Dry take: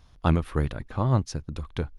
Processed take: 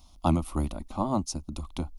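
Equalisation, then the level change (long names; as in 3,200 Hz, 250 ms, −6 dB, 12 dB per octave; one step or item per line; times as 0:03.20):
dynamic equaliser 3,600 Hz, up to −6 dB, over −52 dBFS, Q 0.98
high-shelf EQ 4,600 Hz +9 dB
phaser with its sweep stopped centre 450 Hz, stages 6
+2.5 dB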